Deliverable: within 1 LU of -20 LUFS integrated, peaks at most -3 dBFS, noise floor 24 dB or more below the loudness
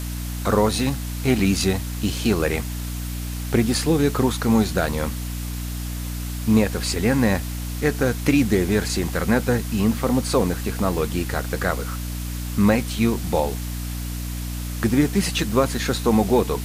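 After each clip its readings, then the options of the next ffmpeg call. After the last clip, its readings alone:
hum 60 Hz; highest harmonic 300 Hz; hum level -26 dBFS; noise floor -29 dBFS; noise floor target -47 dBFS; loudness -22.5 LUFS; peak level -5.5 dBFS; loudness target -20.0 LUFS
-> -af "bandreject=f=60:t=h:w=4,bandreject=f=120:t=h:w=4,bandreject=f=180:t=h:w=4,bandreject=f=240:t=h:w=4,bandreject=f=300:t=h:w=4"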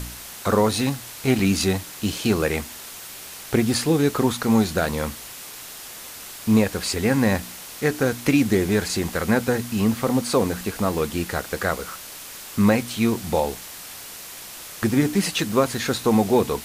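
hum not found; noise floor -39 dBFS; noise floor target -47 dBFS
-> -af "afftdn=nr=8:nf=-39"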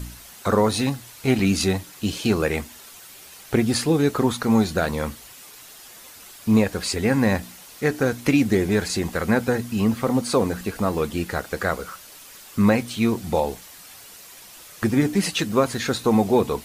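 noise floor -45 dBFS; noise floor target -47 dBFS
-> -af "afftdn=nr=6:nf=-45"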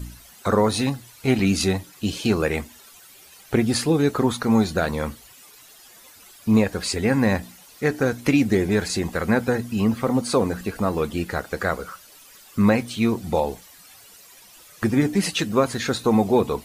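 noise floor -49 dBFS; loudness -22.5 LUFS; peak level -6.0 dBFS; loudness target -20.0 LUFS
-> -af "volume=1.33"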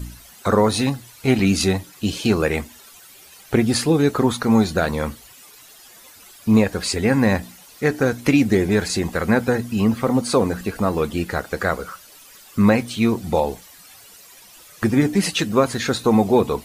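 loudness -20.0 LUFS; peak level -3.5 dBFS; noise floor -46 dBFS

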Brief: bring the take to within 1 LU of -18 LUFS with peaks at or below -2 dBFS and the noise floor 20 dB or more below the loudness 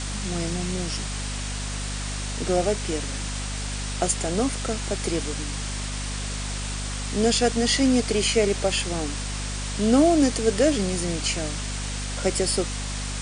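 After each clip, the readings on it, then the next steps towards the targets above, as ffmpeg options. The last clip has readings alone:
hum 50 Hz; highest harmonic 250 Hz; hum level -29 dBFS; noise floor -30 dBFS; noise floor target -45 dBFS; loudness -25.0 LUFS; peak level -8.0 dBFS; loudness target -18.0 LUFS
-> -af "bandreject=f=50:t=h:w=4,bandreject=f=100:t=h:w=4,bandreject=f=150:t=h:w=4,bandreject=f=200:t=h:w=4,bandreject=f=250:t=h:w=4"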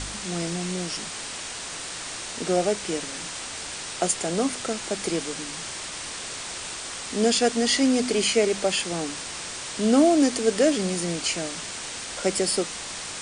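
hum not found; noise floor -35 dBFS; noise floor target -46 dBFS
-> -af "afftdn=nr=11:nf=-35"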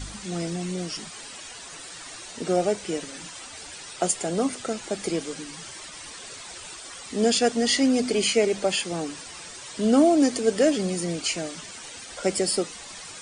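noise floor -41 dBFS; noise floor target -45 dBFS
-> -af "afftdn=nr=6:nf=-41"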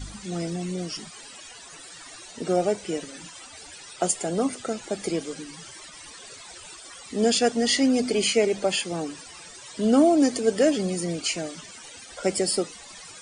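noise floor -45 dBFS; loudness -25.0 LUFS; peak level -8.0 dBFS; loudness target -18.0 LUFS
-> -af "volume=2.24,alimiter=limit=0.794:level=0:latency=1"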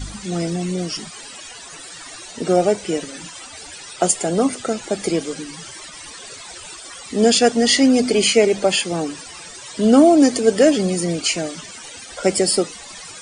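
loudness -18.0 LUFS; peak level -2.0 dBFS; noise floor -38 dBFS

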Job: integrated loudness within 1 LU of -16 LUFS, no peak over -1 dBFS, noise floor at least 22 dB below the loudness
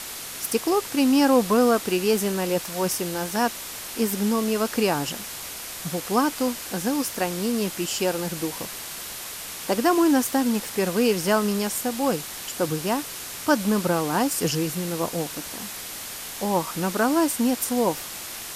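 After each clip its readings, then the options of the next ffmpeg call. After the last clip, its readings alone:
noise floor -36 dBFS; noise floor target -47 dBFS; loudness -24.5 LUFS; peak level -5.5 dBFS; loudness target -16.0 LUFS
-> -af "afftdn=nr=11:nf=-36"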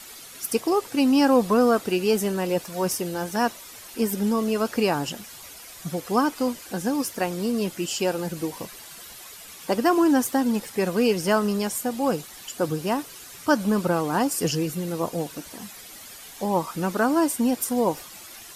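noise floor -43 dBFS; noise floor target -47 dBFS
-> -af "afftdn=nr=6:nf=-43"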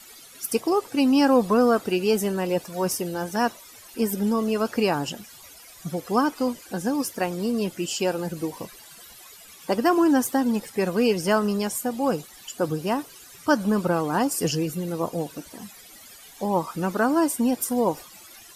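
noise floor -47 dBFS; loudness -24.5 LUFS; peak level -6.0 dBFS; loudness target -16.0 LUFS
-> -af "volume=2.66,alimiter=limit=0.891:level=0:latency=1"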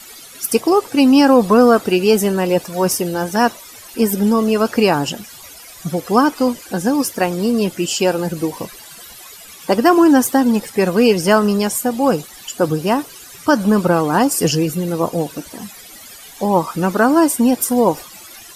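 loudness -16.0 LUFS; peak level -1.0 dBFS; noise floor -39 dBFS

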